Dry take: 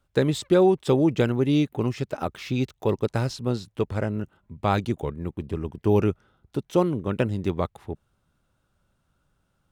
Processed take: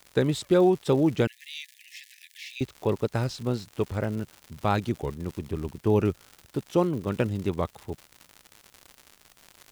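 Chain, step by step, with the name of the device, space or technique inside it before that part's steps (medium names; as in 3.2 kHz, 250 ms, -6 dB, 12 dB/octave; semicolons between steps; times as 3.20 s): vinyl LP (wow and flutter; crackle 140 per s -32 dBFS; white noise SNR 39 dB); 1.27–2.61 s: Chebyshev high-pass 1.7 kHz, order 10; trim -2 dB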